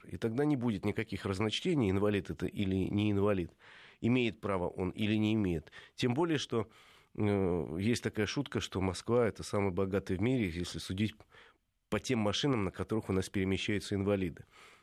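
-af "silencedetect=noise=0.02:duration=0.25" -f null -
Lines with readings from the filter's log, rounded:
silence_start: 3.45
silence_end: 4.03 | silence_duration: 0.58
silence_start: 5.59
silence_end: 6.00 | silence_duration: 0.41
silence_start: 6.62
silence_end: 7.18 | silence_duration: 0.56
silence_start: 11.10
silence_end: 11.92 | silence_duration: 0.83
silence_start: 14.29
silence_end: 14.82 | silence_duration: 0.53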